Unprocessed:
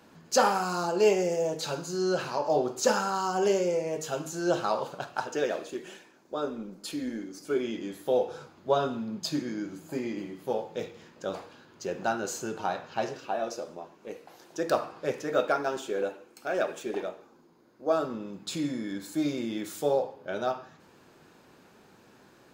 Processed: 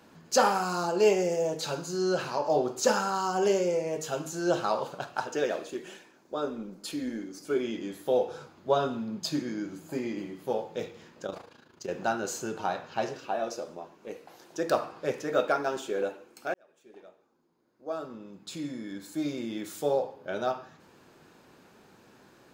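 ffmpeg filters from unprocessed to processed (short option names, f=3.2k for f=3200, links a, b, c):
-filter_complex "[0:a]asettb=1/sr,asplit=3[a][b][c];[a]atrim=end=11.264[d];[b]atrim=start=11.26:end=11.9,asetpts=PTS-STARTPTS,afade=t=in:d=0.004:c=qsin,afade=t=out:st=0.636:d=0.004:c=qsin,tremolo=f=27:d=0.75[e];[c]atrim=start=11.896[f];[d][e]acrossfade=d=0.004:c1=hsin:c2=qsin[g];[g][f]acrossfade=d=0.004:c1=qsin:c2=hsin,asplit=2[h][i];[h]atrim=end=16.54,asetpts=PTS-STARTPTS,afade=t=out:st=16.536:d=0.004:c=hsin[j];[i]atrim=start=16.54,asetpts=PTS-STARTPTS,afade=t=in:d=3.78[k];[j][k]concat=n=2:v=0:a=1"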